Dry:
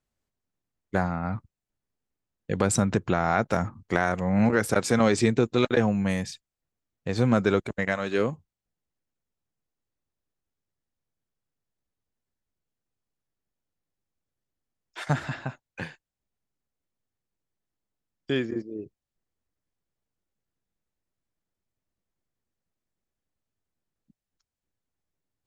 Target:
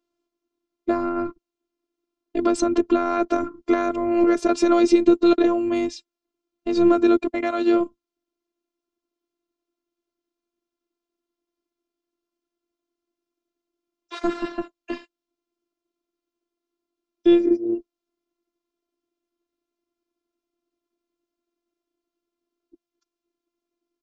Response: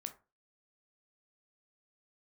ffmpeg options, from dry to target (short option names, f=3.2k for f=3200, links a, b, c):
-filter_complex "[0:a]equalizer=f=240:w=0.6:g=6.5,asplit=2[a][b];[b]alimiter=limit=-15dB:level=0:latency=1:release=69,volume=0dB[c];[a][c]amix=inputs=2:normalize=0,asetrate=46746,aresample=44100,highpass=170,equalizer=f=190:t=q:w=4:g=4,equalizer=f=290:t=q:w=4:g=7,equalizer=f=540:t=q:w=4:g=6,equalizer=f=820:t=q:w=4:g=-9,equalizer=f=1.2k:t=q:w=4:g=8,equalizer=f=1.8k:t=q:w=4:g=-10,lowpass=f=6.4k:w=0.5412,lowpass=f=6.4k:w=1.3066,afftfilt=real='hypot(re,im)*cos(PI*b)':imag='0':win_size=512:overlap=0.75"